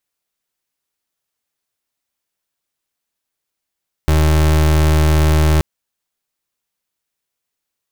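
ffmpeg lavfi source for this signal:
-f lavfi -i "aevalsrc='0.251*(2*lt(mod(77.4*t,1),0.32)-1)':d=1.53:s=44100"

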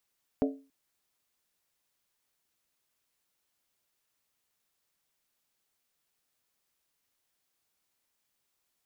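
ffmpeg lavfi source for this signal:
-f lavfi -i "aevalsrc='0.0794*pow(10,-3*t/0.35)*sin(2*PI*273*t)+0.0501*pow(10,-3*t/0.277)*sin(2*PI*435.2*t)+0.0316*pow(10,-3*t/0.239)*sin(2*PI*583.1*t)+0.02*pow(10,-3*t/0.231)*sin(2*PI*626.8*t)+0.0126*pow(10,-3*t/0.215)*sin(2*PI*724.3*t)':d=0.28:s=44100"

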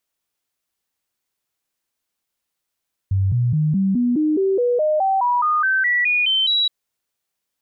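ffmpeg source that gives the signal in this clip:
-f lavfi -i "aevalsrc='0.178*clip(min(mod(t,0.21),0.21-mod(t,0.21))/0.005,0,1)*sin(2*PI*96.6*pow(2,floor(t/0.21)/3)*mod(t,0.21))':d=3.57:s=44100"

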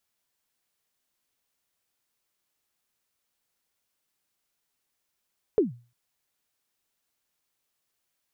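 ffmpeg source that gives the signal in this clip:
-f lavfi -i "aevalsrc='0.2*pow(10,-3*t/0.35)*sin(2*PI*(470*0.142/log(120/470)*(exp(log(120/470)*min(t,0.142)/0.142)-1)+120*max(t-0.142,0)))':d=0.35:s=44100"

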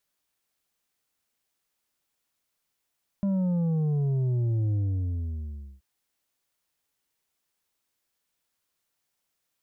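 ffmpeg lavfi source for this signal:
-f lavfi -i "aevalsrc='0.0668*clip((2.58-t)/1.08,0,1)*tanh(2*sin(2*PI*200*2.58/log(65/200)*(exp(log(65/200)*t/2.58)-1)))/tanh(2)':d=2.58:s=44100"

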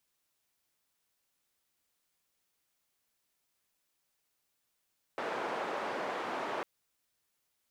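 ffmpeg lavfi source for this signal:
-f lavfi -i "anoisesrc=c=white:d=1.45:r=44100:seed=1,highpass=f=370,lowpass=f=1000,volume=-16.8dB"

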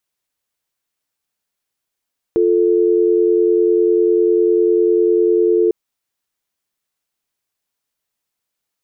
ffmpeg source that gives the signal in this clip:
-f lavfi -i "aevalsrc='0.211*(sin(2*PI*350*t)+sin(2*PI*440*t))':d=3.35:s=44100"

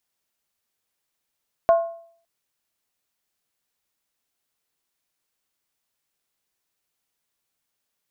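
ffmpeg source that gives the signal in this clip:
-f lavfi -i "aevalsrc='0.316*pow(10,-3*t/0.56)*sin(2*PI*671*t)+0.0841*pow(10,-3*t/0.444)*sin(2*PI*1069.6*t)+0.0224*pow(10,-3*t/0.383)*sin(2*PI*1433.3*t)+0.00596*pow(10,-3*t/0.37)*sin(2*PI*1540.6*t)+0.00158*pow(10,-3*t/0.344)*sin(2*PI*1780.2*t)':d=0.56:s=44100"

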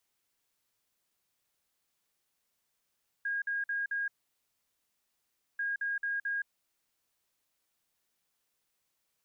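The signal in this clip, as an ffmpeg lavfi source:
-f lavfi -i "aevalsrc='0.0316*sin(2*PI*1630*t)*clip(min(mod(mod(t,2.34),0.22),0.17-mod(mod(t,2.34),0.22))/0.005,0,1)*lt(mod(t,2.34),0.88)':d=4.68:s=44100"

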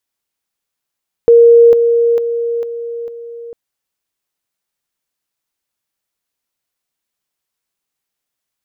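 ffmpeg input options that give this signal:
-f lavfi -i "aevalsrc='pow(10,(-2.5-6*floor(t/0.45))/20)*sin(2*PI*468*t)':d=2.25:s=44100"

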